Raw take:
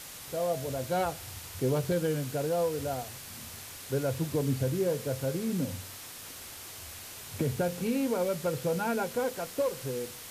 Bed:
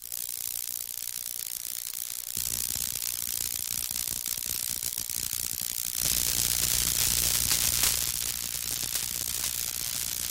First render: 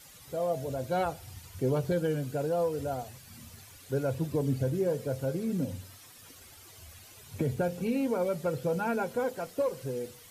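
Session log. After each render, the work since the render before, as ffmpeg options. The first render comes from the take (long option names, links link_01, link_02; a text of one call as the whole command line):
ffmpeg -i in.wav -af "afftdn=noise_reduction=12:noise_floor=-45" out.wav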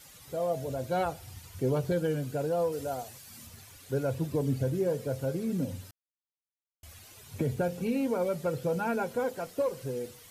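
ffmpeg -i in.wav -filter_complex "[0:a]asettb=1/sr,asplit=3[link_01][link_02][link_03];[link_01]atrim=end=2.724[link_04];[link_02]atrim=start=2.72:end=3.47,asetpts=PTS-STARTPTS,afade=type=in:duration=0.004:curve=qsin,afade=type=out:start_time=0.746:duration=0.004:curve=qsin,bass=frequency=250:gain=-6,treble=frequency=4000:gain=4[link_05];[link_03]atrim=start=3.466[link_06];[link_04][link_05]acrossfade=duration=0.004:curve1=hsin:curve2=qsin[link_07];[link_07][link_06]acrossfade=duration=0.004:curve1=qsin:curve2=hsin,asplit=3[link_08][link_09][link_10];[link_08]atrim=end=5.91,asetpts=PTS-STARTPTS,afade=type=out:start_time=5.906:duration=0.004:curve=hsin[link_11];[link_09]atrim=start=5.91:end=6.83,asetpts=PTS-STARTPTS,volume=0[link_12];[link_10]atrim=start=6.83,asetpts=PTS-STARTPTS,afade=type=in:duration=0.004:curve=hsin[link_13];[link_11][link_12][link_13]concat=n=3:v=0:a=1" out.wav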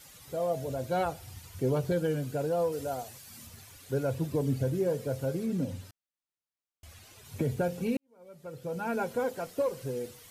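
ffmpeg -i in.wav -filter_complex "[0:a]asettb=1/sr,asplit=3[link_01][link_02][link_03];[link_01]atrim=end=5.464[link_04];[link_02]atrim=start=5.46:end=7.25,asetpts=PTS-STARTPTS,afade=type=in:duration=0.004:curve=qsin,afade=type=out:start_time=1.786:duration=0.004:curve=qsin,highshelf=frequency=9400:gain=-7.5[link_05];[link_03]atrim=start=7.246[link_06];[link_04][link_05]acrossfade=duration=0.004:curve1=hsin:curve2=qsin[link_07];[link_07][link_06]acrossfade=duration=0.004:curve1=qsin:curve2=hsin,asplit=2[link_08][link_09];[link_08]atrim=end=7.97,asetpts=PTS-STARTPTS,afade=type=out:start_time=7.966:duration=0.004:curve=hsin[link_10];[link_09]atrim=start=7.97,asetpts=PTS-STARTPTS,afade=type=in:duration=1.04:curve=qua[link_11];[link_10][link_11]concat=n=2:v=0:a=1" out.wav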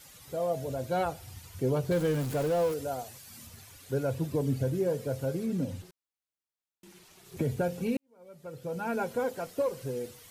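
ffmpeg -i in.wav -filter_complex "[0:a]asettb=1/sr,asplit=3[link_01][link_02][link_03];[link_01]atrim=end=1.914[link_04];[link_02]atrim=start=1.91:end=2.74,asetpts=PTS-STARTPTS,afade=type=in:duration=0.004:curve=qsin,afade=type=out:start_time=0.826:duration=0.004:curve=qsin,aeval=exprs='val(0)+0.5*0.0188*sgn(val(0))':channel_layout=same[link_05];[link_03]atrim=start=2.736[link_06];[link_04][link_05]acrossfade=duration=0.004:curve1=hsin:curve2=qsin[link_07];[link_07][link_06]acrossfade=duration=0.004:curve1=qsin:curve2=hsin,asettb=1/sr,asplit=3[link_08][link_09][link_10];[link_08]atrim=end=5.824[link_11];[link_09]atrim=start=5.82:end=7.37,asetpts=PTS-STARTPTS,afade=type=in:duration=0.004:curve=qsin,afade=type=out:start_time=1.546:duration=0.004:curve=qsin,aeval=exprs='val(0)*sin(2*PI*270*n/s)':channel_layout=same[link_12];[link_10]atrim=start=7.366[link_13];[link_11][link_12]acrossfade=duration=0.004:curve1=hsin:curve2=qsin[link_14];[link_14][link_13]acrossfade=duration=0.004:curve1=qsin:curve2=hsin" out.wav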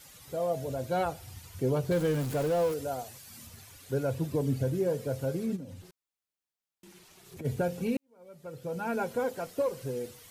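ffmpeg -i in.wav -filter_complex "[0:a]asplit=3[link_01][link_02][link_03];[link_01]afade=type=out:start_time=5.55:duration=0.02[link_04];[link_02]acompressor=threshold=-44dB:ratio=2.5:attack=3.2:release=140:knee=1:detection=peak,afade=type=in:start_time=5.55:duration=0.02,afade=type=out:start_time=7.44:duration=0.02[link_05];[link_03]afade=type=in:start_time=7.44:duration=0.02[link_06];[link_04][link_05][link_06]amix=inputs=3:normalize=0" out.wav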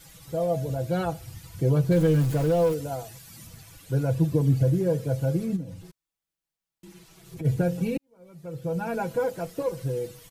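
ffmpeg -i in.wav -af "lowshelf=frequency=180:gain=11,aecho=1:1:6.1:0.65" out.wav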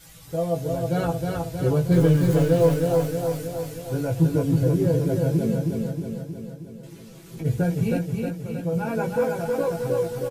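ffmpeg -i in.wav -filter_complex "[0:a]asplit=2[link_01][link_02];[link_02]adelay=18,volume=-3dB[link_03];[link_01][link_03]amix=inputs=2:normalize=0,aecho=1:1:315|630|945|1260|1575|1890|2205|2520:0.668|0.394|0.233|0.137|0.081|0.0478|0.0282|0.0166" out.wav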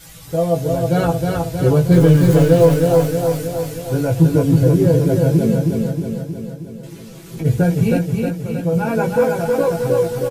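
ffmpeg -i in.wav -af "volume=7.5dB,alimiter=limit=-2dB:level=0:latency=1" out.wav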